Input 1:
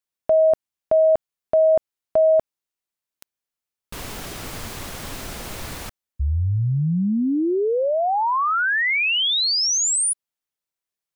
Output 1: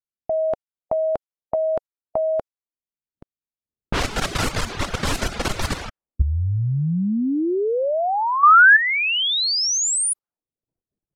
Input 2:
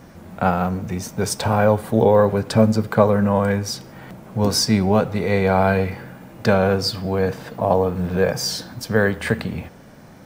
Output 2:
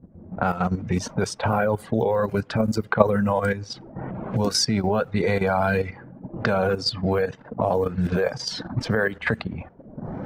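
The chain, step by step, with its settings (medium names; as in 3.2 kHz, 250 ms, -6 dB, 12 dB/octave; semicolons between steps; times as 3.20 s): recorder AGC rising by 21 dB/s, up to +22 dB; level-controlled noise filter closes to 300 Hz, open at -13 dBFS; reverb removal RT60 1 s; dynamic bell 1.4 kHz, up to +4 dB, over -41 dBFS, Q 5.6; level held to a coarse grid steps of 11 dB; trim +1 dB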